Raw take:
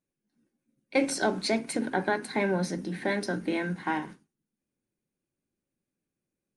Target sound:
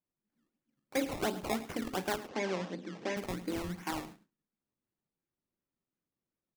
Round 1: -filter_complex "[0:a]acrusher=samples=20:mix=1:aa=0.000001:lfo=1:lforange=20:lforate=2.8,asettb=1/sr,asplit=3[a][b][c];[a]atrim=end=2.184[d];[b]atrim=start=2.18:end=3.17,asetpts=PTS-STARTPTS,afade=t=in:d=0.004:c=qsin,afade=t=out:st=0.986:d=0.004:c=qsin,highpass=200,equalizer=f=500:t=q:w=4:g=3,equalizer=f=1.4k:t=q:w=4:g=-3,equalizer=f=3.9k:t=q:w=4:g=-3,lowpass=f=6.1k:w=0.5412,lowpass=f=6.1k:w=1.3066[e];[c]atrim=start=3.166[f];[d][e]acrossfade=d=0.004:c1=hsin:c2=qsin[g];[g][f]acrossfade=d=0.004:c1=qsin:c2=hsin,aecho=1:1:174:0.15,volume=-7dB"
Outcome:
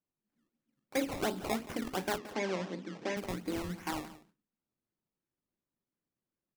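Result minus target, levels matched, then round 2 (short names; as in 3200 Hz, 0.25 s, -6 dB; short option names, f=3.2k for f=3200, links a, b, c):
echo 67 ms late
-filter_complex "[0:a]acrusher=samples=20:mix=1:aa=0.000001:lfo=1:lforange=20:lforate=2.8,asettb=1/sr,asplit=3[a][b][c];[a]atrim=end=2.184[d];[b]atrim=start=2.18:end=3.17,asetpts=PTS-STARTPTS,afade=t=in:d=0.004:c=qsin,afade=t=out:st=0.986:d=0.004:c=qsin,highpass=200,equalizer=f=500:t=q:w=4:g=3,equalizer=f=1.4k:t=q:w=4:g=-3,equalizer=f=3.9k:t=q:w=4:g=-3,lowpass=f=6.1k:w=0.5412,lowpass=f=6.1k:w=1.3066[e];[c]atrim=start=3.166[f];[d][e]acrossfade=d=0.004:c1=hsin:c2=qsin[g];[g][f]acrossfade=d=0.004:c1=qsin:c2=hsin,aecho=1:1:107:0.15,volume=-7dB"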